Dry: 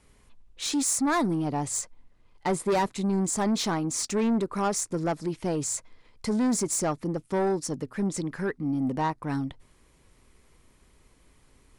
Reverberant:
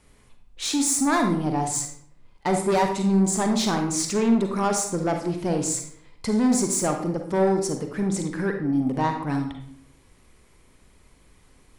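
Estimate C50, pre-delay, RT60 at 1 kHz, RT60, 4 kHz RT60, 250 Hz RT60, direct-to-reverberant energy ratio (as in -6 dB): 5.5 dB, 37 ms, 0.55 s, 0.60 s, 0.45 s, 0.80 s, 4.0 dB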